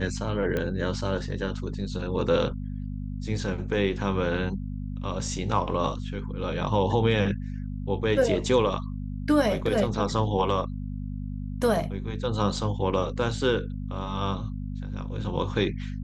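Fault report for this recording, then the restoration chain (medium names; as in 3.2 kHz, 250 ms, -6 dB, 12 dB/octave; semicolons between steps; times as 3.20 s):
hum 50 Hz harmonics 5 -33 dBFS
0.57 s: pop -16 dBFS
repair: de-click; de-hum 50 Hz, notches 5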